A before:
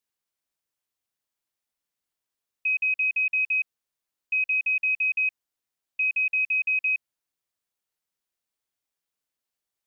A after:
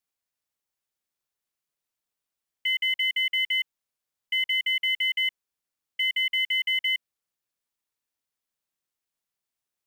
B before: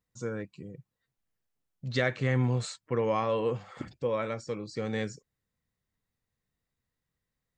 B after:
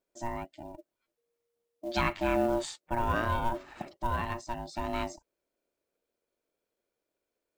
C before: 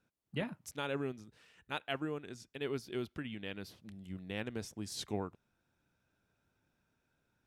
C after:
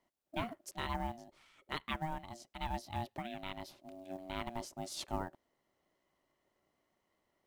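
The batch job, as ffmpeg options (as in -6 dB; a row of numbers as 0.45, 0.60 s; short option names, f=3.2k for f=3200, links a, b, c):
-af "aeval=exprs='val(0)*sin(2*PI*470*n/s)':c=same,acrusher=bits=7:mode=log:mix=0:aa=0.000001,volume=2dB"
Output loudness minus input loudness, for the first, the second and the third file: -1.0, -1.0, -1.0 LU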